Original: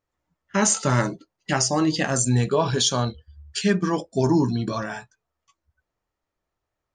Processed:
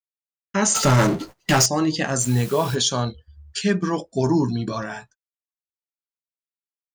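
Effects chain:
noise gate −49 dBFS, range −50 dB
0:00.75–0:01.66: power curve on the samples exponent 0.5
0:02.19–0:02.74: background noise white −40 dBFS

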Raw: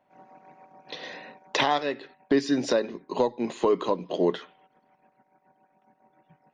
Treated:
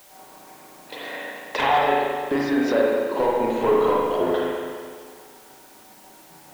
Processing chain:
high-shelf EQ 3,800 Hz −7.5 dB
reversed playback
upward compression, threshold −46 dBFS
reversed playback
mid-hump overdrive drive 15 dB, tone 2,400 Hz, clips at −11 dBFS
spring reverb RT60 1.9 s, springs 35/42 ms, chirp 60 ms, DRR −4.5 dB
bit-depth reduction 8 bits, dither triangular
level −3 dB

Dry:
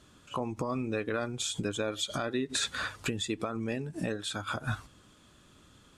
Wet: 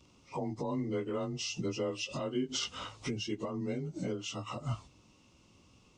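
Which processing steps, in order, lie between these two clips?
partials spread apart or drawn together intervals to 92%
parametric band 1,600 Hz −12 dB 0.75 octaves

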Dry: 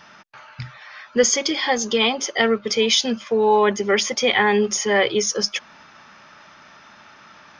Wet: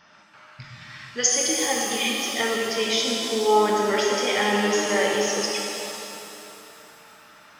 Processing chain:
0:00.64–0:01.27: spectral tilt +3.5 dB per octave
0:01.97–0:02.21: healed spectral selection 300–1,600 Hz
reverb with rising layers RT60 2.8 s, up +7 semitones, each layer −8 dB, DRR −2.5 dB
level −8.5 dB

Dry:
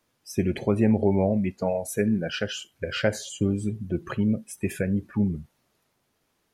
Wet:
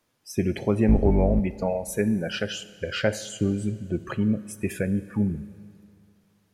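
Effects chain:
0:00.88–0:01.40: sub-octave generator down 2 octaves, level +2 dB
four-comb reverb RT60 2.3 s, combs from 26 ms, DRR 15.5 dB

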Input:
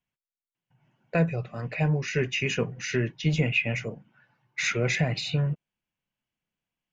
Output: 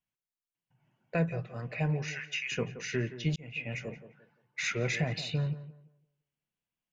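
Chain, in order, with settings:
0:02.06–0:02.52: high-pass filter 1,200 Hz 24 dB per octave
tape delay 172 ms, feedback 32%, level −11.5 dB, low-pass 1,600 Hz
0:03.36–0:03.88: fade in linear
level −5.5 dB

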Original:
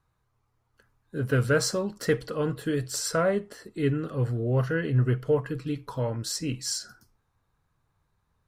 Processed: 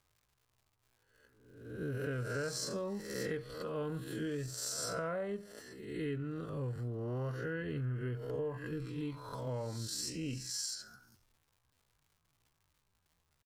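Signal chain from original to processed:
peak hold with a rise ahead of every peak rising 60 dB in 0.55 s
surface crackle 240 per second −51 dBFS
tempo change 0.63×
downward compressor 6 to 1, threshold −26 dBFS, peak gain reduction 9 dB
level −8.5 dB

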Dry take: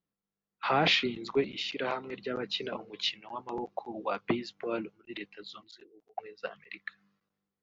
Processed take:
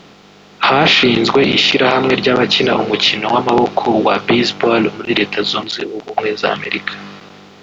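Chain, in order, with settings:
compressor on every frequency bin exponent 0.6
boost into a limiter +21.5 dB
level −1 dB

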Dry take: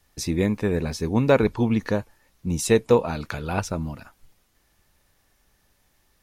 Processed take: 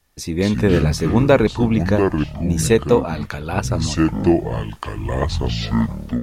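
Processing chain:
delay with pitch and tempo change per echo 156 ms, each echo −6 semitones, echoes 3, each echo −6 dB
automatic gain control gain up to 12 dB
level −1 dB

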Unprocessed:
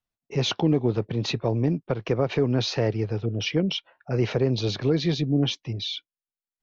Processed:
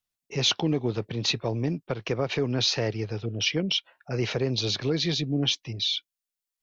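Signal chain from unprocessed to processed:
high-shelf EQ 2,000 Hz +11.5 dB
level −4.5 dB

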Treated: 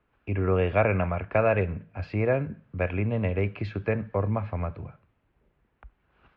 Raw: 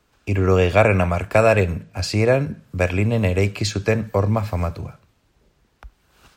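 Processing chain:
low-pass filter 2,600 Hz 24 dB per octave
level −7.5 dB

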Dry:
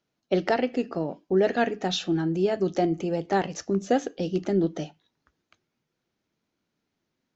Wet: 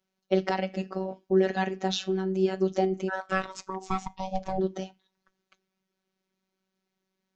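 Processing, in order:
0:03.08–0:04.58: ring modulation 1,200 Hz → 310 Hz
phases set to zero 189 Hz

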